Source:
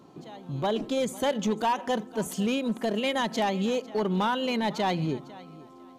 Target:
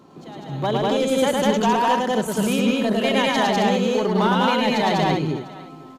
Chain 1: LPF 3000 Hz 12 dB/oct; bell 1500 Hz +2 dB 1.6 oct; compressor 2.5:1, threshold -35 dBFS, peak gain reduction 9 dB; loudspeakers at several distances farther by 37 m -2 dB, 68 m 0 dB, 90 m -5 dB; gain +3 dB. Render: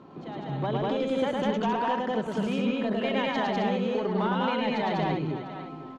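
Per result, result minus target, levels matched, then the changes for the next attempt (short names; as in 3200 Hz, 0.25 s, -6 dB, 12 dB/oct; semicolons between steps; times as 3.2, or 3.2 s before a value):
compressor: peak gain reduction +9 dB; 4000 Hz band -3.0 dB
remove: compressor 2.5:1, threshold -35 dBFS, peak gain reduction 9 dB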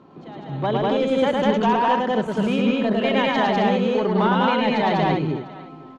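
4000 Hz band -3.5 dB
remove: LPF 3000 Hz 12 dB/oct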